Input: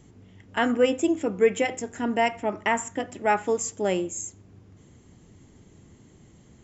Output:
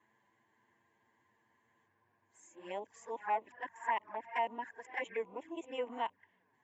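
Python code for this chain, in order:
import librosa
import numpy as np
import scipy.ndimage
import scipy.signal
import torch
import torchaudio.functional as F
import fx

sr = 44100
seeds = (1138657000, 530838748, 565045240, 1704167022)

y = x[::-1].copy()
y = fx.env_flanger(y, sr, rest_ms=10.2, full_db=-21.0)
y = fx.double_bandpass(y, sr, hz=1300.0, octaves=0.72)
y = F.gain(torch.from_numpy(y), 2.0).numpy()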